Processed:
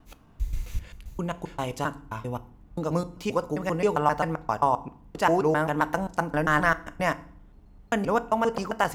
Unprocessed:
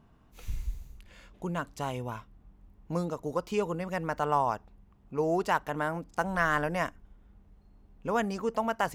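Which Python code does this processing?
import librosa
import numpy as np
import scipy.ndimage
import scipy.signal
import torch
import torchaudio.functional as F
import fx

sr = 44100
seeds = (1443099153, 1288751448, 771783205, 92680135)

y = fx.block_reorder(x, sr, ms=132.0, group=3)
y = fx.rev_fdn(y, sr, rt60_s=0.52, lf_ratio=1.55, hf_ratio=0.85, size_ms=20.0, drr_db=13.0)
y = F.gain(torch.from_numpy(y), 5.0).numpy()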